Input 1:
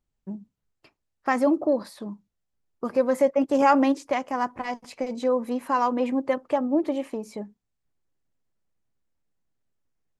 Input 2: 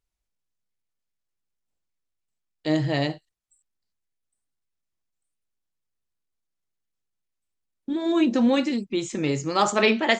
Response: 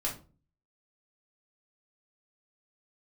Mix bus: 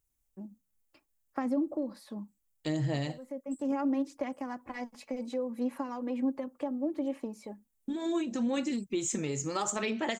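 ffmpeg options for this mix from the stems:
-filter_complex "[0:a]aecho=1:1:3.6:0.39,acrossover=split=360[link_01][link_02];[link_02]acompressor=threshold=-29dB:ratio=10[link_03];[link_01][link_03]amix=inputs=2:normalize=0,adelay=100,volume=-8dB[link_04];[1:a]equalizer=frequency=89:width=0.83:gain=5.5,acompressor=threshold=-25dB:ratio=10,aexciter=amount=3:drive=8.1:freq=6400,volume=-4.5dB,asplit=2[link_05][link_06];[link_06]apad=whole_len=454131[link_07];[link_04][link_07]sidechaincompress=threshold=-47dB:ratio=6:attack=8.3:release=513[link_08];[link_08][link_05]amix=inputs=2:normalize=0,aphaser=in_gain=1:out_gain=1:delay=4.7:decay=0.29:speed=0.7:type=sinusoidal"

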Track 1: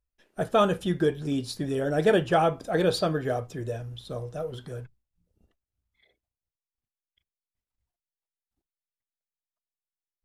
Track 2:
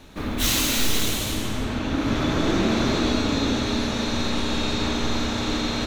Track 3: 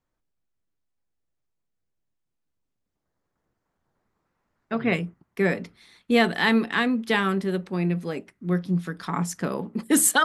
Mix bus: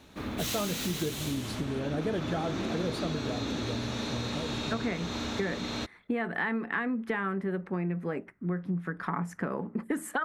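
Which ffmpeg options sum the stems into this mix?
ffmpeg -i stem1.wav -i stem2.wav -i stem3.wav -filter_complex "[0:a]equalizer=frequency=150:width_type=o:width=2.5:gain=8,volume=-6.5dB[link_01];[1:a]highpass=63,volume=-6.5dB[link_02];[2:a]acompressor=threshold=-21dB:ratio=6,highshelf=frequency=2700:width_type=q:width=1.5:gain=-14,volume=1.5dB[link_03];[link_01][link_02][link_03]amix=inputs=3:normalize=0,acompressor=threshold=-30dB:ratio=3" out.wav

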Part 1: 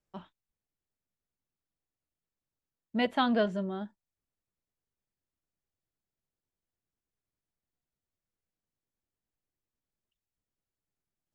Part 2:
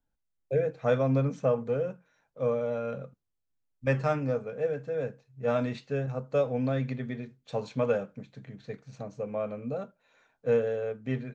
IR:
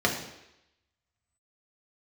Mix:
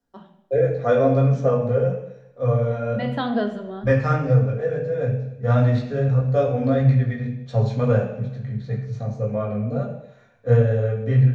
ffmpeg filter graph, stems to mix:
-filter_complex "[0:a]volume=-3dB,asplit=2[link_01][link_02];[link_02]volume=-11.5dB[link_03];[1:a]asubboost=boost=9.5:cutoff=95,flanger=delay=15.5:depth=5.1:speed=1.6,volume=-1dB,asplit=3[link_04][link_05][link_06];[link_05]volume=-3.5dB[link_07];[link_06]apad=whole_len=500106[link_08];[link_01][link_08]sidechaincompress=threshold=-51dB:ratio=8:attack=16:release=113[link_09];[2:a]atrim=start_sample=2205[link_10];[link_03][link_07]amix=inputs=2:normalize=0[link_11];[link_11][link_10]afir=irnorm=-1:irlink=0[link_12];[link_09][link_04][link_12]amix=inputs=3:normalize=0"

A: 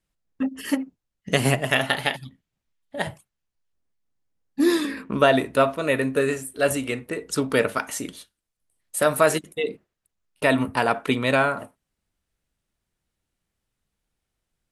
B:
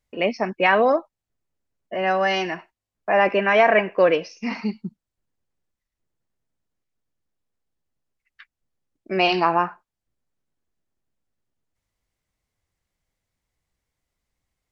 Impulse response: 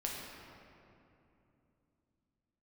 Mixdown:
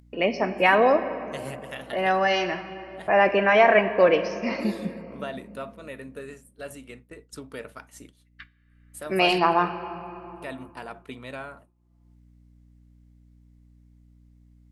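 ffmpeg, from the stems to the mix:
-filter_complex "[0:a]aeval=exprs='val(0)+0.0141*(sin(2*PI*60*n/s)+sin(2*PI*2*60*n/s)/2+sin(2*PI*3*60*n/s)/3+sin(2*PI*4*60*n/s)/4+sin(2*PI*5*60*n/s)/5)':channel_layout=same,volume=-17.5dB[link_01];[1:a]volume=-3.5dB,asplit=2[link_02][link_03];[link_03]volume=-8dB[link_04];[2:a]atrim=start_sample=2205[link_05];[link_04][link_05]afir=irnorm=-1:irlink=0[link_06];[link_01][link_02][link_06]amix=inputs=3:normalize=0,agate=range=-33dB:threshold=-42dB:ratio=3:detection=peak,acompressor=mode=upward:threshold=-36dB:ratio=2.5"

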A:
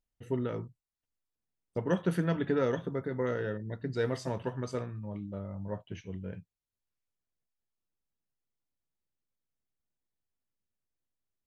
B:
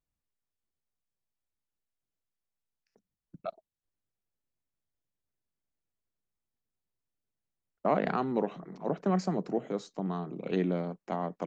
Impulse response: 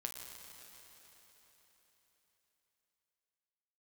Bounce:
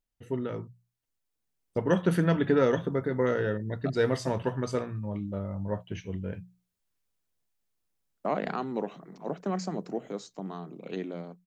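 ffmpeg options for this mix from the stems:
-filter_complex "[0:a]volume=0.5dB[link_01];[1:a]highshelf=frequency=4400:gain=9,adelay=400,volume=-7.5dB[link_02];[link_01][link_02]amix=inputs=2:normalize=0,bandreject=frequency=60:width_type=h:width=6,bandreject=frequency=120:width_type=h:width=6,bandreject=frequency=180:width_type=h:width=6,dynaudnorm=framelen=250:gausssize=11:maxgain=5dB"

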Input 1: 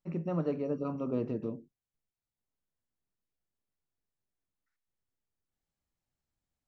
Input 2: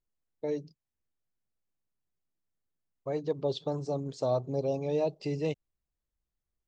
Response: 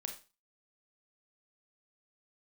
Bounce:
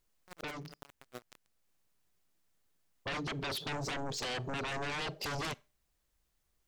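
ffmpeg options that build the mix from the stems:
-filter_complex "[0:a]highpass=frequency=1200:poles=1,acrusher=bits=5:mix=0:aa=0.000001,aeval=exprs='val(0)*pow(10,-22*(0.5-0.5*cos(2*PI*12*n/s))/20)':channel_layout=same,volume=2.5dB[link_01];[1:a]lowshelf=frequency=480:gain=-6,acompressor=threshold=-32dB:ratio=10,aeval=exprs='0.0501*sin(PI/2*6.31*val(0)/0.0501)':channel_layout=same,volume=-8dB,asplit=2[link_02][link_03];[link_03]volume=-16.5dB[link_04];[2:a]atrim=start_sample=2205[link_05];[link_04][link_05]afir=irnorm=-1:irlink=0[link_06];[link_01][link_02][link_06]amix=inputs=3:normalize=0,alimiter=level_in=9dB:limit=-24dB:level=0:latency=1:release=423,volume=-9dB"

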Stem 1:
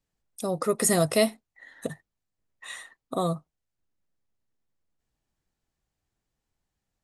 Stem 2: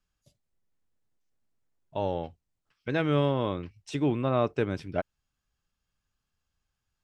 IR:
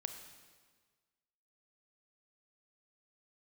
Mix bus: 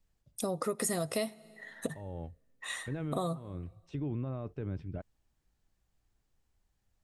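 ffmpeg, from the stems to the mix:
-filter_complex "[0:a]volume=0dB,asplit=3[link_01][link_02][link_03];[link_02]volume=-17.5dB[link_04];[1:a]alimiter=limit=-22.5dB:level=0:latency=1:release=31,aemphasis=mode=reproduction:type=riaa,volume=-11.5dB[link_05];[link_03]apad=whole_len=310302[link_06];[link_05][link_06]sidechaincompress=threshold=-30dB:ratio=8:attack=16:release=632[link_07];[2:a]atrim=start_sample=2205[link_08];[link_04][link_08]afir=irnorm=-1:irlink=0[link_09];[link_01][link_07][link_09]amix=inputs=3:normalize=0,acompressor=threshold=-30dB:ratio=6"

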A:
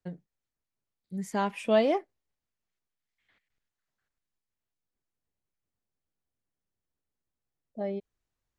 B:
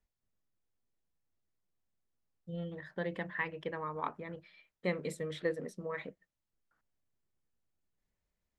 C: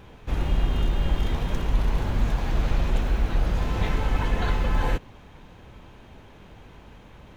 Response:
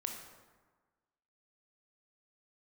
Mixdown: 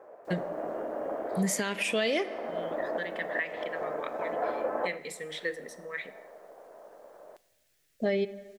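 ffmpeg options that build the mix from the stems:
-filter_complex "[0:a]acontrast=87,adelay=250,volume=0.5dB,asplit=2[link_01][link_02];[link_02]volume=-10dB[link_03];[1:a]highpass=180,volume=-8.5dB,asplit=3[link_04][link_05][link_06];[link_05]volume=-5.5dB[link_07];[2:a]lowpass=frequency=1000:width=0.5412,lowpass=frequency=1000:width=1.3066,tremolo=f=270:d=0.71,highpass=frequency=630:width_type=q:width=4.9,volume=-1.5dB,asplit=2[link_08][link_09];[link_09]volume=-16dB[link_10];[link_06]apad=whole_len=324852[link_11];[link_08][link_11]sidechaincompress=threshold=-48dB:ratio=8:attack=33:release=295[link_12];[3:a]atrim=start_sample=2205[link_13];[link_03][link_07][link_10]amix=inputs=3:normalize=0[link_14];[link_14][link_13]afir=irnorm=-1:irlink=0[link_15];[link_01][link_04][link_12][link_15]amix=inputs=4:normalize=0,firequalizer=gain_entry='entry(280,0);entry(440,5);entry(830,-5);entry(1700,13)':delay=0.05:min_phase=1,alimiter=limit=-19.5dB:level=0:latency=1:release=425"

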